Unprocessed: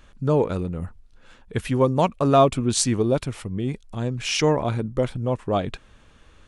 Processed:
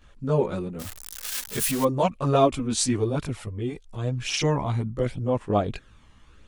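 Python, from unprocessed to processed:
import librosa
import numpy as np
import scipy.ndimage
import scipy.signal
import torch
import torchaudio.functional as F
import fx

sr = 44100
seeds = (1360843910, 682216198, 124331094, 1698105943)

y = fx.crossing_spikes(x, sr, level_db=-14.5, at=(0.79, 1.83))
y = fx.chorus_voices(y, sr, voices=2, hz=0.46, base_ms=17, depth_ms=2.8, mix_pct=65)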